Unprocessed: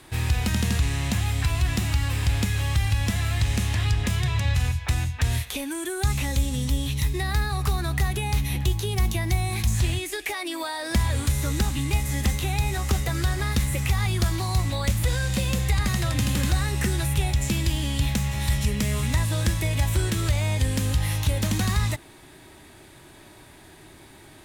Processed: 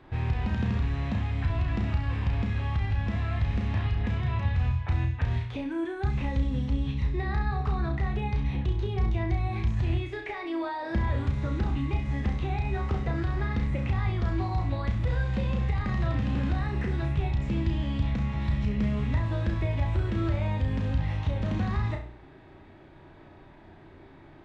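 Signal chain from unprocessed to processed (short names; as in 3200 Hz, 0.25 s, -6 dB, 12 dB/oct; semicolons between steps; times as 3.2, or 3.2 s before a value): notches 60/120/180/240/300/360/420 Hz; limiter -16.5 dBFS, peak gain reduction 4.5 dB; tape spacing loss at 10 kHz 43 dB; on a send: flutter echo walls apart 5.7 m, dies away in 0.39 s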